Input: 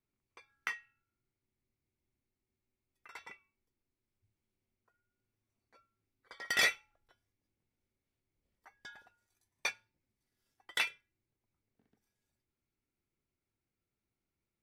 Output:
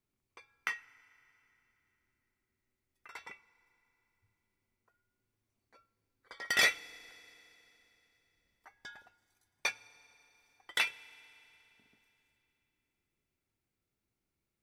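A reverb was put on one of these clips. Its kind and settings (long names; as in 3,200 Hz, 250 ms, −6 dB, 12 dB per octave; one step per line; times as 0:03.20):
feedback delay network reverb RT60 3.4 s, high-frequency decay 0.95×, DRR 19 dB
level +2 dB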